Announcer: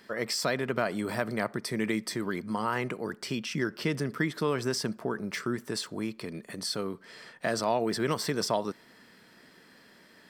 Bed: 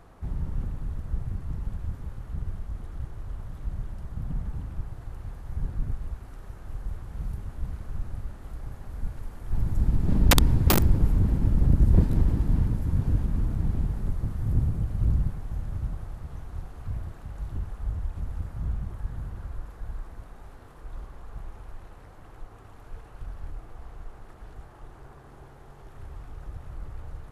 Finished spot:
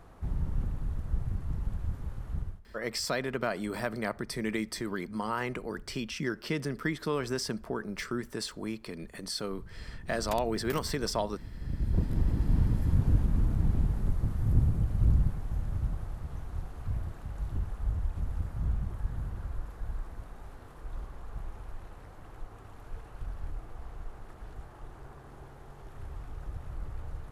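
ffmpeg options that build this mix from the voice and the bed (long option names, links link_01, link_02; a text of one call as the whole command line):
ffmpeg -i stem1.wav -i stem2.wav -filter_complex "[0:a]adelay=2650,volume=-2.5dB[link_01];[1:a]volume=19.5dB,afade=type=out:start_time=2.37:duration=0.24:silence=0.1,afade=type=in:start_time=11.57:duration=1.25:silence=0.0944061[link_02];[link_01][link_02]amix=inputs=2:normalize=0" out.wav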